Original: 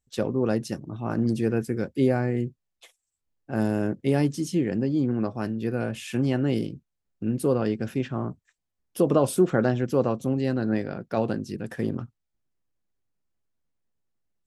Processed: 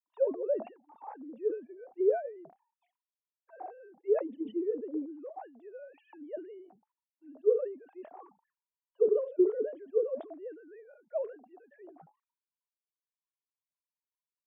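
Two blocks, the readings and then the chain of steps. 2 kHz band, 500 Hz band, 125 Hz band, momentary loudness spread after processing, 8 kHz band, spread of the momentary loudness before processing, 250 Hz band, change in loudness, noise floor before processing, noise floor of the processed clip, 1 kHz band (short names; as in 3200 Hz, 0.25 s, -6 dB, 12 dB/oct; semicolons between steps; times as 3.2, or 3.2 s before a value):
under -20 dB, -4.0 dB, under -40 dB, 21 LU, under -35 dB, 10 LU, -15.0 dB, -6.0 dB, -81 dBFS, under -85 dBFS, -12.0 dB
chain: sine-wave speech; auto-wah 430–1000 Hz, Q 16, down, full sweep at -19 dBFS; sustainer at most 140 dB/s; gain +4 dB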